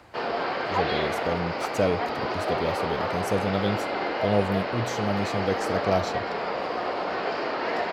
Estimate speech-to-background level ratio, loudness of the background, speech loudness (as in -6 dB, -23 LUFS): -1.0 dB, -28.5 LUFS, -29.5 LUFS